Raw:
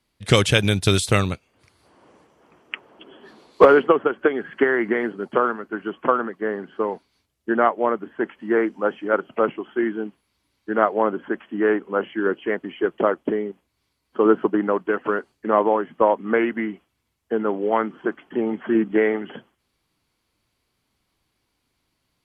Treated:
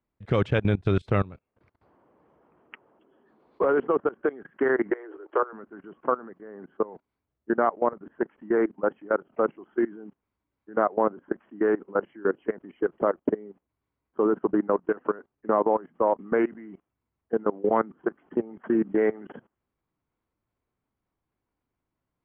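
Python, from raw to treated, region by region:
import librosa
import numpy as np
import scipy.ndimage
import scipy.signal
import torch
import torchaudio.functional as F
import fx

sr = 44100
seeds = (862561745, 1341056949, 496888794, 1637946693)

y = fx.chain(x, sr, fx.cheby_ripple_highpass(hz=310.0, ripple_db=3),
    fx.high_shelf_res(hz=4400.0, db=-7.5, q=1.5),
    fx.band_squash(depth_pct=40), at=(4.9, 5.53))
y = fx.chain(y, sr, fx.highpass(hz=54.0, slope=12),
    fx.low_shelf(hz=170.0, db=9.0), at=(17.63, 18.06))
y = scipy.signal.sosfilt(scipy.signal.butter(2, 1400.0, 'lowpass', fs=sr, output='sos'), y)
y = fx.level_steps(y, sr, step_db=21)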